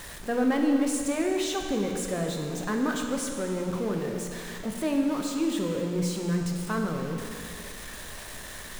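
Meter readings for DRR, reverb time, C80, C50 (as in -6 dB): 2.0 dB, 2.4 s, 4.5 dB, 3.5 dB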